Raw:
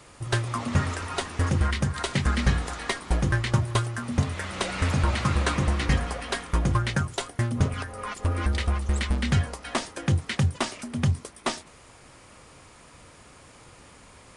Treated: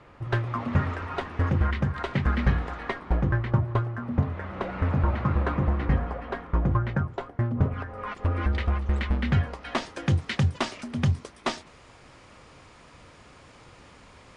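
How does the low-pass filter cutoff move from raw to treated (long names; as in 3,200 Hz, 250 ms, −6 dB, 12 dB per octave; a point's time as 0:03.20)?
0:02.68 2,100 Hz
0:03.54 1,300 Hz
0:07.68 1,300 Hz
0:08.11 2,500 Hz
0:09.40 2,500 Hz
0:09.95 5,300 Hz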